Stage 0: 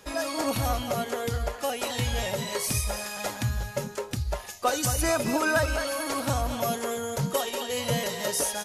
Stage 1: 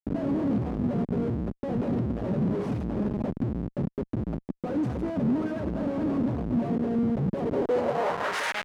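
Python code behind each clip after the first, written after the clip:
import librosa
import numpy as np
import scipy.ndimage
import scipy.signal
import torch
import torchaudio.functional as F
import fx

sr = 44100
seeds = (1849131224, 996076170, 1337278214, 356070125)

y = fx.schmitt(x, sr, flips_db=-28.5)
y = fx.filter_sweep_bandpass(y, sr, from_hz=220.0, to_hz=2100.0, start_s=7.34, end_s=8.56, q=1.5)
y = y * librosa.db_to_amplitude(8.0)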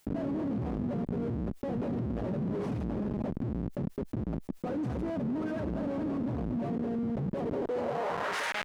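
y = fx.env_flatten(x, sr, amount_pct=70)
y = y * librosa.db_to_amplitude(-8.5)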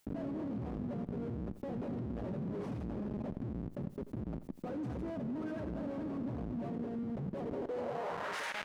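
y = fx.echo_feedback(x, sr, ms=87, feedback_pct=31, wet_db=-14.0)
y = y * librosa.db_to_amplitude(-6.5)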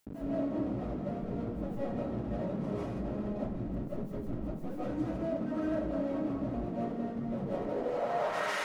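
y = fx.rev_freeverb(x, sr, rt60_s=0.4, hf_ratio=0.45, predelay_ms=115, drr_db=-8.5)
y = y * librosa.db_to_amplitude(-3.5)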